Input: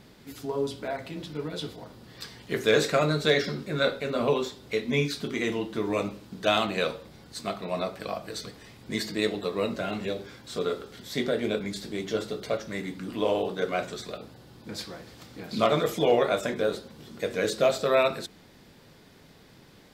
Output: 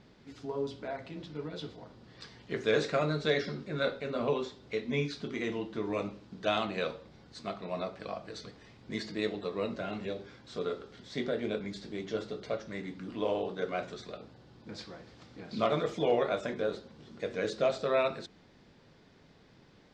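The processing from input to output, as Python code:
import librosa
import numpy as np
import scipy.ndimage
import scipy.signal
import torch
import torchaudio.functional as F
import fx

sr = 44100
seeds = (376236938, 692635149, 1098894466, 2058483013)

y = scipy.signal.sosfilt(scipy.signal.butter(4, 6300.0, 'lowpass', fs=sr, output='sos'), x)
y = fx.peak_eq(y, sr, hz=4600.0, db=-3.0, octaves=2.1)
y = y * 10.0 ** (-5.5 / 20.0)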